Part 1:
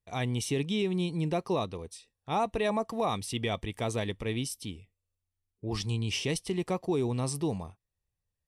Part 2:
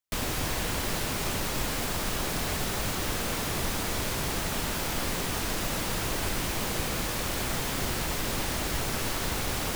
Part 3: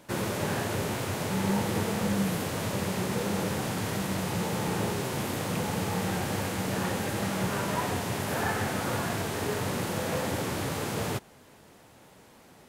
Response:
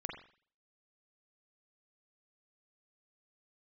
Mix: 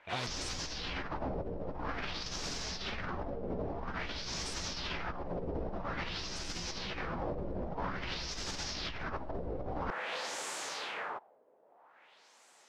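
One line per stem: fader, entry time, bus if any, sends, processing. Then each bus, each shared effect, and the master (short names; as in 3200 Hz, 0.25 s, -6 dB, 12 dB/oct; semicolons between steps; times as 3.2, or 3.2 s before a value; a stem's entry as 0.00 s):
-11.5 dB, 0.00 s, no send, negative-ratio compressor -36 dBFS
+1.0 dB, 0.15 s, no send, resonant high shelf 7000 Hz -10 dB, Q 3; chorus voices 6, 0.62 Hz, delay 14 ms, depth 3.6 ms
-13.0 dB, 0.00 s, no send, HPF 730 Hz 12 dB/oct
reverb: off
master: LFO low-pass sine 0.5 Hz 500–7800 Hz; negative-ratio compressor -38 dBFS, ratio -1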